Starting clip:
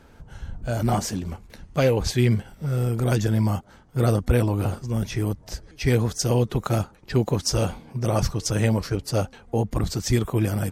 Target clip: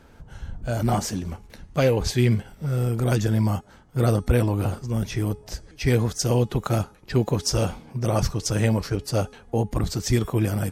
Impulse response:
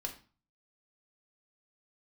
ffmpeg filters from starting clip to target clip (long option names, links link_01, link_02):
-af "bandreject=frequency=420.9:width_type=h:width=4,bandreject=frequency=841.8:width_type=h:width=4,bandreject=frequency=1262.7:width_type=h:width=4,bandreject=frequency=1683.6:width_type=h:width=4,bandreject=frequency=2104.5:width_type=h:width=4,bandreject=frequency=2525.4:width_type=h:width=4,bandreject=frequency=2946.3:width_type=h:width=4,bandreject=frequency=3367.2:width_type=h:width=4,bandreject=frequency=3788.1:width_type=h:width=4,bandreject=frequency=4209:width_type=h:width=4,bandreject=frequency=4629.9:width_type=h:width=4,bandreject=frequency=5050.8:width_type=h:width=4,bandreject=frequency=5471.7:width_type=h:width=4,bandreject=frequency=5892.6:width_type=h:width=4,bandreject=frequency=6313.5:width_type=h:width=4,bandreject=frequency=6734.4:width_type=h:width=4,bandreject=frequency=7155.3:width_type=h:width=4,bandreject=frequency=7576.2:width_type=h:width=4,bandreject=frequency=7997.1:width_type=h:width=4,bandreject=frequency=8418:width_type=h:width=4,bandreject=frequency=8838.9:width_type=h:width=4,bandreject=frequency=9259.8:width_type=h:width=4,bandreject=frequency=9680.7:width_type=h:width=4,bandreject=frequency=10101.6:width_type=h:width=4,bandreject=frequency=10522.5:width_type=h:width=4,bandreject=frequency=10943.4:width_type=h:width=4,bandreject=frequency=11364.3:width_type=h:width=4"